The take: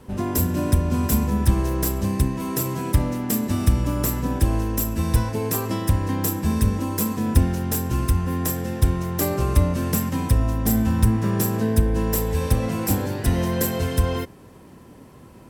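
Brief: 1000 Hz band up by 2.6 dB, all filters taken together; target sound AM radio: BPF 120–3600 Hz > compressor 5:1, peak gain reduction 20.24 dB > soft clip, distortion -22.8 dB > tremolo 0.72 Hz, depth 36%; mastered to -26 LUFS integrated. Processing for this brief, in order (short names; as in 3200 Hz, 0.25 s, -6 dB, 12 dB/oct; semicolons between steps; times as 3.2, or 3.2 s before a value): BPF 120–3600 Hz; bell 1000 Hz +3 dB; compressor 5:1, threshold -39 dBFS; soft clip -30.5 dBFS; tremolo 0.72 Hz, depth 36%; gain +17.5 dB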